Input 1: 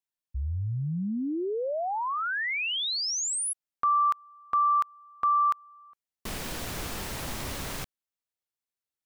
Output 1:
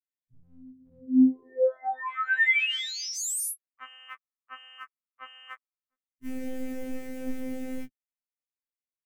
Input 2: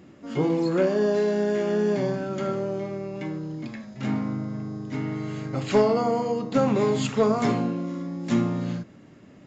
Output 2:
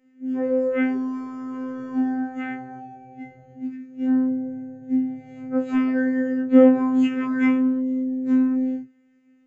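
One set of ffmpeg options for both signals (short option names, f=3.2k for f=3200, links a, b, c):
-filter_complex "[0:a]acrossover=split=240[a][b];[a]alimiter=level_in=3dB:limit=-24dB:level=0:latency=1:release=435,volume=-3dB[c];[c][b]amix=inputs=2:normalize=0,afwtdn=0.02,equalizer=f=250:t=o:w=1:g=4,equalizer=f=500:t=o:w=1:g=3,equalizer=f=1k:t=o:w=1:g=-10,equalizer=f=2k:t=o:w=1:g=11,equalizer=f=4k:t=o:w=1:g=-9,afftfilt=real='hypot(re,im)*cos(PI*b)':imag='0':win_size=2048:overlap=0.75,afftfilt=real='re*2.45*eq(mod(b,6),0)':imag='im*2.45*eq(mod(b,6),0)':win_size=2048:overlap=0.75,volume=5.5dB"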